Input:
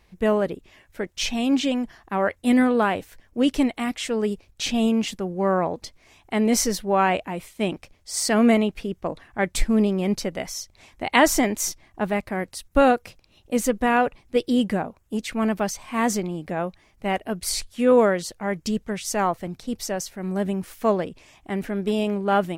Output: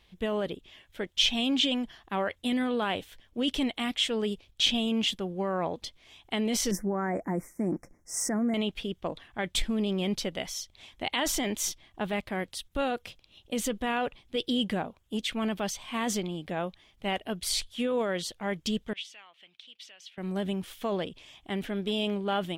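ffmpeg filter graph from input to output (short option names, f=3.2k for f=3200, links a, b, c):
-filter_complex "[0:a]asettb=1/sr,asplit=3[a][b][c];[a]atrim=end=6.714[d];[b]atrim=start=6.71:end=8.54,asetpts=PTS-STARTPTS,afade=t=in:d=0.004:c=qsin,afade=t=out:st=1.826:d=0.004:c=qsin,asuperstop=centerf=3400:order=12:qfactor=0.98,equalizer=f=260:w=1.1:g=10,aecho=1:1:5.8:0.31,atrim=end_sample=80703[e];[c]atrim=start=8.536[f];[d][e]acrossfade=d=0.004:c1=hsin:c2=qsin[g];[g][f]acrossfade=d=0.004:c1=qsin:c2=hsin,asettb=1/sr,asplit=3[h][i][j];[h]atrim=end=18.934[k];[i]atrim=start=18.93:end=20.18,asetpts=PTS-STARTPTS,afade=t=in:d=0.004:c=qsin,afade=t=out:st=1.246:d=0.004:c=qsin,acompressor=threshold=-28dB:ratio=10:attack=3.2:release=140:knee=1:detection=peak,bandpass=f=2.7k:t=q:w=2.6[l];[j]atrim=start=20.176[m];[k][l]acrossfade=d=0.004:c1=hsin:c2=qsin[n];[n][m]acrossfade=d=0.004:c1=qsin:c2=hsin,alimiter=limit=-15.5dB:level=0:latency=1:release=18,equalizer=f=3.3k:w=2.6:g=14,volume=-5.5dB"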